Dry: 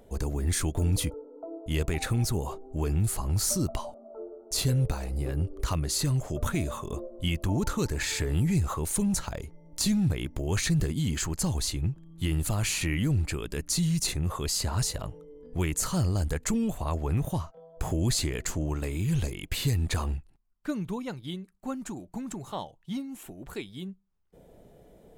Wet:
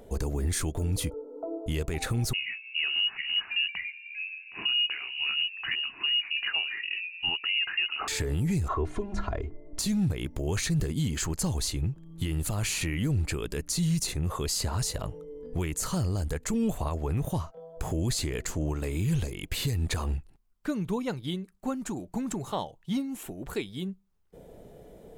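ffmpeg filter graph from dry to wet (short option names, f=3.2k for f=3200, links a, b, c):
-filter_complex "[0:a]asettb=1/sr,asplit=3[a][b][c];[a]atrim=end=2.334[d];[b]atrim=start=2.33:end=8.08,asetpts=PTS-STARTPTS,afade=t=in:d=0.004:c=qsin,afade=t=out:st=5.746:d=0.004:c=qsin,highpass=f=110:w=0.5412,highpass=f=110:w=1.3066,lowpass=f=2.6k:t=q:w=0.5098,lowpass=f=2.6k:t=q:w=0.6013,lowpass=f=2.6k:t=q:w=0.9,lowpass=f=2.6k:t=q:w=2.563,afreqshift=-3000,equalizer=f=520:t=o:w=0.56:g=-13[e];[c]atrim=start=8.076[f];[d][e]acrossfade=d=0.004:c1=hsin:c2=qsin[g];[g][f]acrossfade=d=0.004:c1=qsin:c2=hsin,asettb=1/sr,asplit=3[h][i][j];[h]atrim=end=8.684[k];[i]atrim=start=8.68:end=9.79,asetpts=PTS-STARTPTS,afade=t=in:d=0.004:c=qsin,afade=t=out:st=1.106:d=0.004:c=qsin,lowpass=1.9k,aecho=1:1:2.9:0.97,atrim=end_sample=48951,bandreject=f=50.51:t=h:w=4,bandreject=f=101.02:t=h:w=4,bandreject=f=151.53:t=h:w=4,bandreject=f=202.04:t=h:w=4,bandreject=f=252.55:t=h:w=4,bandreject=f=303.06:t=h:w=4,bandreject=f=353.57:t=h:w=4[l];[j]atrim=start=9.786[m];[k][l]acrossfade=d=0.004:c1=hsin:c2=qsin[n];[n][m]acrossfade=d=0.004:c1=qsin:c2=hsin,equalizer=f=450:w=3.6:g=3,alimiter=limit=-23.5dB:level=0:latency=1:release=341,volume=4dB"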